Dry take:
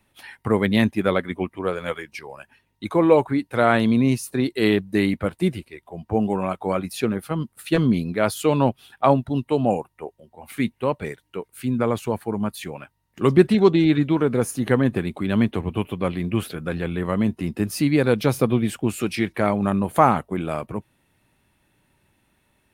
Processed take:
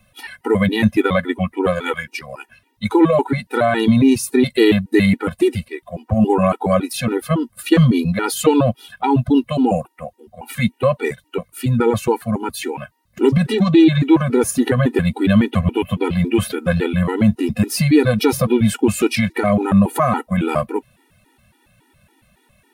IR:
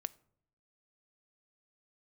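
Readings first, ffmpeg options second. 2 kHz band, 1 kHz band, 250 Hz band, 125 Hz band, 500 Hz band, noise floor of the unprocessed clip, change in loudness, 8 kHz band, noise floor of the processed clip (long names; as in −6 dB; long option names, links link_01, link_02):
+4.5 dB, +2.5 dB, +5.5 dB, +6.0 dB, +3.5 dB, −69 dBFS, +5.0 dB, +8.0 dB, −61 dBFS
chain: -af "alimiter=level_in=11.5dB:limit=-1dB:release=50:level=0:latency=1,afftfilt=real='re*gt(sin(2*PI*3.6*pts/sr)*(1-2*mod(floor(b*sr/1024/250),2)),0)':imag='im*gt(sin(2*PI*3.6*pts/sr)*(1-2*mod(floor(b*sr/1024/250),2)),0)':win_size=1024:overlap=0.75"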